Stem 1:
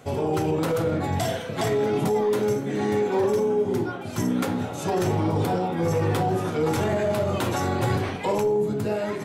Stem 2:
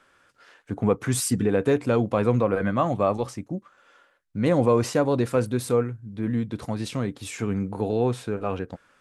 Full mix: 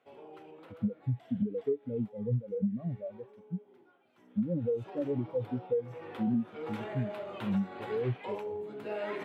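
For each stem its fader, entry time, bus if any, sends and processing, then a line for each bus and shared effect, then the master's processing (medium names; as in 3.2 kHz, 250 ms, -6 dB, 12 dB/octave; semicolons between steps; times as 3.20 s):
4.18 s -22 dB -> 4.83 s -10 dB -> 5.79 s -10 dB -> 6.43 s -3.5 dB, 0.00 s, no send, high-pass 320 Hz 12 dB/octave; resonant high shelf 4.3 kHz -12.5 dB, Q 1.5; auto duck -11 dB, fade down 1.80 s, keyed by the second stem
+2.5 dB, 0.00 s, no send, tilt shelf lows +4.5 dB; peak limiter -13.5 dBFS, peak gain reduction 7.5 dB; spectral contrast expander 4:1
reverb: none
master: compression 8:1, threshold -27 dBFS, peak gain reduction 12 dB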